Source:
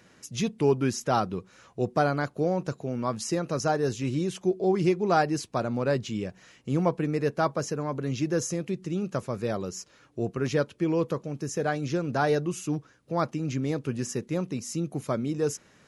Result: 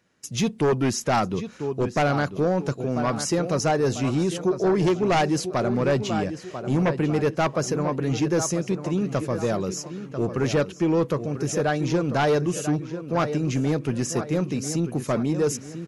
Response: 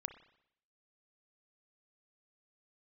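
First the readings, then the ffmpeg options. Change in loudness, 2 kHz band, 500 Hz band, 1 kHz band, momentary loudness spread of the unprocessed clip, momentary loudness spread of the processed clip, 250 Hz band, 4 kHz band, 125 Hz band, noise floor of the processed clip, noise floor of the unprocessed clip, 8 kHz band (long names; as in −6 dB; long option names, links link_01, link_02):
+4.0 dB, +4.5 dB, +4.0 dB, +3.0 dB, 8 LU, 5 LU, +4.5 dB, +6.0 dB, +5.0 dB, −42 dBFS, −59 dBFS, +5.5 dB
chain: -filter_complex "[0:a]asplit=2[link_01][link_02];[link_02]adelay=993,lowpass=frequency=4100:poles=1,volume=-11.5dB,asplit=2[link_03][link_04];[link_04]adelay=993,lowpass=frequency=4100:poles=1,volume=0.4,asplit=2[link_05][link_06];[link_06]adelay=993,lowpass=frequency=4100:poles=1,volume=0.4,asplit=2[link_07][link_08];[link_08]adelay=993,lowpass=frequency=4100:poles=1,volume=0.4[link_09];[link_01][link_03][link_05][link_07][link_09]amix=inputs=5:normalize=0,aeval=exprs='0.316*sin(PI/2*2.51*val(0)/0.316)':channel_layout=same,agate=range=-17dB:threshold=-37dB:ratio=16:detection=peak,volume=-6dB"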